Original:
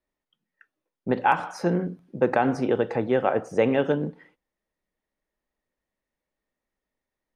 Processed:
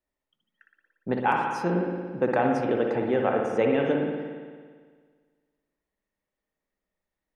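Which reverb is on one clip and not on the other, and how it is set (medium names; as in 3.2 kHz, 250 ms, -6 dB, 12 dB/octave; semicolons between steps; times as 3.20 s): spring tank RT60 1.7 s, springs 56 ms, chirp 75 ms, DRR 1 dB; trim -3.5 dB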